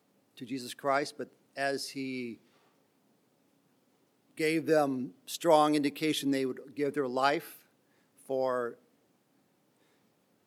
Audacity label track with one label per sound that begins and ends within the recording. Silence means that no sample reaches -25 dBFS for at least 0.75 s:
0.860000	1.750000	sound
4.400000	7.370000	sound
8.310000	8.660000	sound